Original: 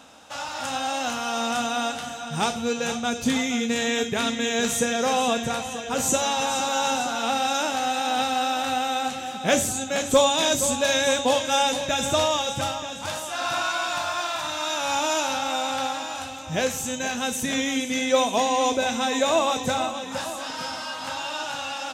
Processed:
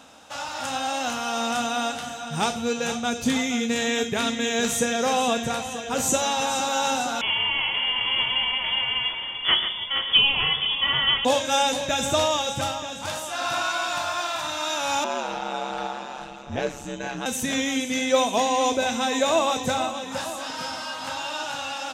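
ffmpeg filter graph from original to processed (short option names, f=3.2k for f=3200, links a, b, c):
-filter_complex "[0:a]asettb=1/sr,asplit=3[a][b][c];[a]atrim=end=7.214[d];[b]atrim=start=7.21:end=11.25,asetpts=PTS-STARTPTS,afade=t=in:d=0.004:c=qsin,afade=t=out:st=4.036:d=0.004:c=qsin,lowpass=f=3.1k:t=q:w=0.5098,lowpass=f=3.1k:t=q:w=0.6013,lowpass=f=3.1k:t=q:w=0.9,lowpass=f=3.1k:t=q:w=2.563,afreqshift=-3600,aecho=1:1:139:0.355,atrim=end_sample=178164[e];[c]atrim=start=11.246[f];[d][e]acrossfade=d=0.004:c1=hsin:c2=qsin[g];[g][f]acrossfade=d=0.004:c1=qsin:c2=hsin,asettb=1/sr,asplit=3[h][i][j];[h]atrim=end=15.044[k];[i]atrim=start=15.04:end=17.26,asetpts=PTS-STARTPTS,afade=t=in:d=0.004:c=qsin,afade=t=out:st=2.216:d=0.004:c=qsin,aemphasis=mode=reproduction:type=75fm,aeval=exprs='val(0)*sin(2*PI*67*n/s)':c=same[l];[j]atrim=start=17.256[m];[k][l]acrossfade=d=0.004:c1=hsin:c2=qsin[n];[n][m]acrossfade=d=0.004:c1=qsin:c2=hsin"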